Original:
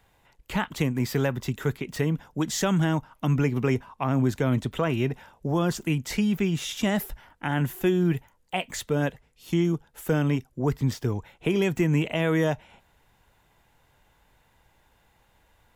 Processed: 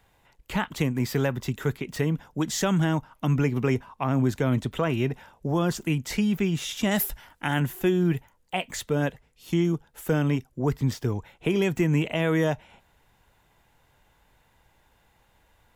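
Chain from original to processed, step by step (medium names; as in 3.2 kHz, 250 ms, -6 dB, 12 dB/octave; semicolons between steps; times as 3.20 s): 6.91–7.60 s: treble shelf 2.9 kHz +10 dB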